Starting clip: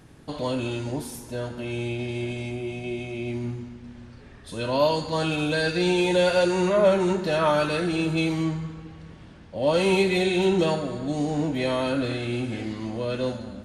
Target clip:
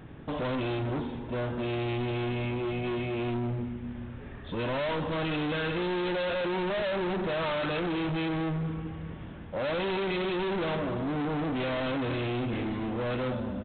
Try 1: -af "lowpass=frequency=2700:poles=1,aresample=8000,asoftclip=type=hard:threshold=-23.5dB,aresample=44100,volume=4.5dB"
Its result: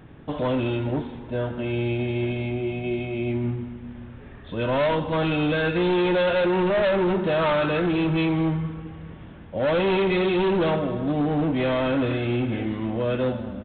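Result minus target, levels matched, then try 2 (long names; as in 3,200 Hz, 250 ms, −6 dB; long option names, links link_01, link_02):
hard clipping: distortion −6 dB
-af "lowpass=frequency=2700:poles=1,aresample=8000,asoftclip=type=hard:threshold=-33.5dB,aresample=44100,volume=4.5dB"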